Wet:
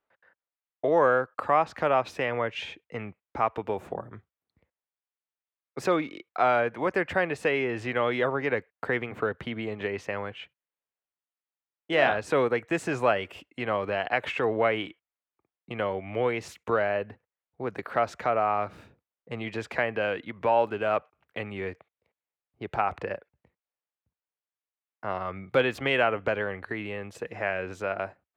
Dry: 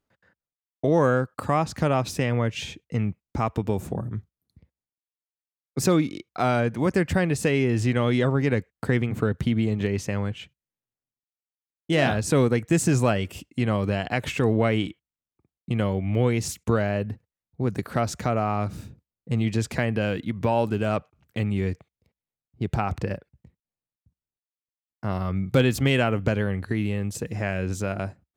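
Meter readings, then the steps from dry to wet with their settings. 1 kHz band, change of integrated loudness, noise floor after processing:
+2.0 dB, -3.0 dB, under -85 dBFS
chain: three-band isolator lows -19 dB, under 420 Hz, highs -20 dB, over 3100 Hz; gain +2.5 dB

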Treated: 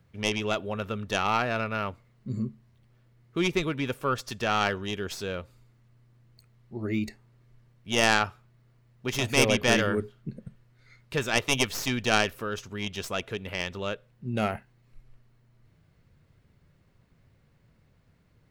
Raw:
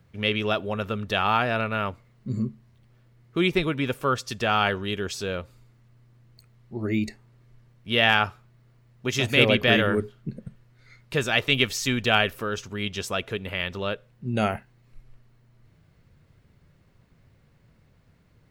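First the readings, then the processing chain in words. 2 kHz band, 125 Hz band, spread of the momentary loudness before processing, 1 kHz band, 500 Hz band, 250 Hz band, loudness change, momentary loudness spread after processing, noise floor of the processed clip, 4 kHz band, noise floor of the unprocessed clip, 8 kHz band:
-4.0 dB, -4.0 dB, 14 LU, -3.0 dB, -3.0 dB, -3.0 dB, -3.5 dB, 14 LU, -64 dBFS, -4.5 dB, -60 dBFS, +3.5 dB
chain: tracing distortion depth 0.13 ms; gain -3.5 dB

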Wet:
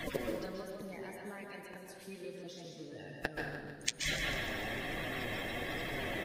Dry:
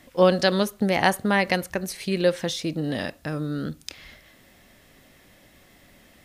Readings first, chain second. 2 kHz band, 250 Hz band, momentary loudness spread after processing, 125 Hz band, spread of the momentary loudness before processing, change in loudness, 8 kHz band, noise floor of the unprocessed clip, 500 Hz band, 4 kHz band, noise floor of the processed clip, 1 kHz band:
-9.0 dB, -17.0 dB, 13 LU, -15.0 dB, 11 LU, -15.5 dB, -6.5 dB, -55 dBFS, -17.0 dB, -9.5 dB, -51 dBFS, -17.0 dB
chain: bin magnitudes rounded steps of 30 dB; in parallel at -2 dB: compressor, threshold -35 dBFS, peak gain reduction 20.5 dB; on the sum: limiter -14.5 dBFS, peak gain reduction 9 dB; flipped gate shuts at -27 dBFS, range -32 dB; plate-style reverb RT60 1.1 s, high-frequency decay 0.6×, pre-delay 0.115 s, DRR 0.5 dB; flange 1.2 Hz, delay 5.8 ms, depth 4.3 ms, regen -34%; on a send: feedback echo 0.149 s, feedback 59%, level -11 dB; on the sum: gain +11.5 dB

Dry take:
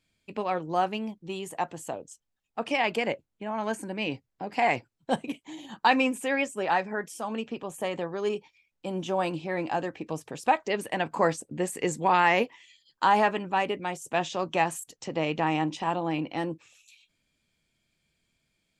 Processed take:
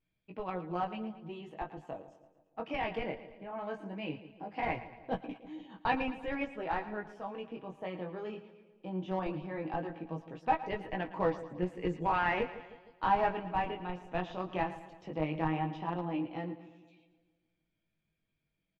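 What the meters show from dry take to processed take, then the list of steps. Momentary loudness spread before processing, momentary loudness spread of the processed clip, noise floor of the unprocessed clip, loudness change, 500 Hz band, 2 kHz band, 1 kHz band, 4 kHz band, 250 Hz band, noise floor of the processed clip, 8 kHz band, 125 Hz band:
13 LU, 13 LU, -79 dBFS, -8.0 dB, -8.0 dB, -9.5 dB, -7.5 dB, -12.5 dB, -6.0 dB, -83 dBFS, under -30 dB, -3.0 dB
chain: low shelf 400 Hz +2.5 dB; notch 4200 Hz, Q 25; vibrato 0.51 Hz 20 cents; chorus 0.18 Hz, delay 16 ms, depth 6.4 ms; in parallel at -4 dB: Schmitt trigger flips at -21.5 dBFS; on the sum: air absorption 280 m; comb 6.3 ms, depth 34%; on a send: split-band echo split 670 Hz, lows 0.155 s, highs 0.113 s, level -14 dB; on the sum: gain -5.5 dB

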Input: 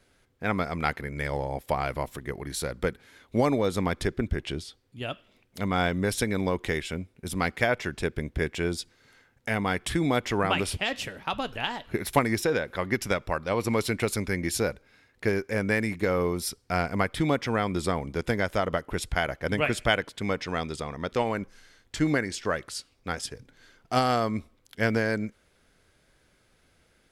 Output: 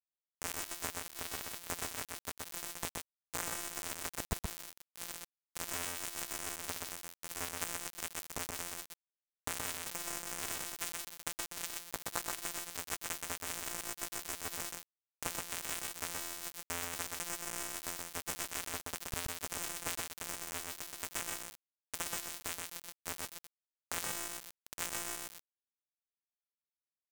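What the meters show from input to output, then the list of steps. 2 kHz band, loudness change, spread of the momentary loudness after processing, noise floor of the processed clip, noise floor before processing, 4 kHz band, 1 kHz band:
-13.5 dB, -11.0 dB, 6 LU, under -85 dBFS, -66 dBFS, -8.0 dB, -15.0 dB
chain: sample sorter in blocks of 256 samples; low shelf 360 Hz -8.5 dB; in parallel at +1 dB: limiter -16 dBFS, peak gain reduction 10.5 dB; on the sum: compressor 2.5:1, threshold -43 dBFS, peak gain reduction 18.5 dB; ten-band EQ 125 Hz +6 dB, 250 Hz -7 dB, 500 Hz -11 dB, 1000 Hz +4 dB, 2000 Hz -10 dB, 4000 Hz -9 dB, 8000 Hz +6 dB; sample gate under -33.5 dBFS; on a send: echo 0.125 s -3 dB; on the sum: gain +6 dB

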